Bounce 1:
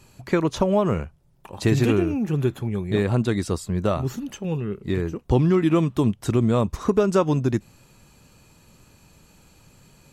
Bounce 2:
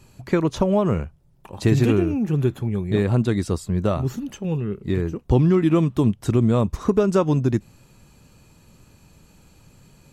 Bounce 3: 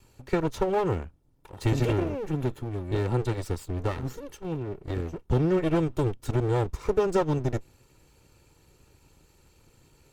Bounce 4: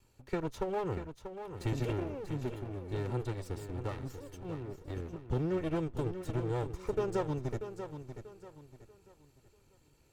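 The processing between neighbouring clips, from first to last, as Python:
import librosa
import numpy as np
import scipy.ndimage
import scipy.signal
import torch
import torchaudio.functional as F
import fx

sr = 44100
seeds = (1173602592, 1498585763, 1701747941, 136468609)

y1 = fx.low_shelf(x, sr, hz=390.0, db=4.5)
y1 = y1 * librosa.db_to_amplitude(-1.5)
y2 = fx.lower_of_two(y1, sr, delay_ms=2.2)
y2 = y2 * librosa.db_to_amplitude(-5.5)
y3 = fx.echo_feedback(y2, sr, ms=638, feedback_pct=33, wet_db=-9.5)
y3 = y3 * librosa.db_to_amplitude(-9.0)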